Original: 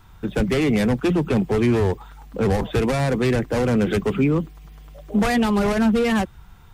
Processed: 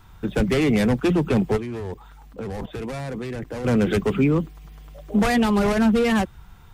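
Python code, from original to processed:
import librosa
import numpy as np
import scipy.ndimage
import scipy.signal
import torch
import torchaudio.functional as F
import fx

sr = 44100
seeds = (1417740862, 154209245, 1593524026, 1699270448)

y = fx.level_steps(x, sr, step_db=15, at=(1.56, 3.64), fade=0.02)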